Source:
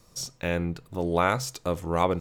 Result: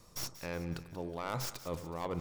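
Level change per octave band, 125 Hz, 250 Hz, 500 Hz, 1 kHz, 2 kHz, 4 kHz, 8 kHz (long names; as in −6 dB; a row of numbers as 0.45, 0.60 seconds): −10.0, −11.5, −13.0, −14.0, −13.5, −7.5, −8.0 decibels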